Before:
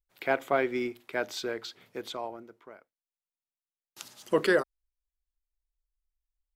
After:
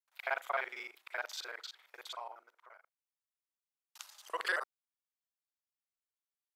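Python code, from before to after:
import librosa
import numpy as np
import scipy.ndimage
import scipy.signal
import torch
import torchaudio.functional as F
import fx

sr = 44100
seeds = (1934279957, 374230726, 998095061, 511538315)

y = fx.local_reverse(x, sr, ms=38.0)
y = fx.ladder_highpass(y, sr, hz=720.0, resonance_pct=25)
y = F.gain(torch.from_numpy(y), 1.0).numpy()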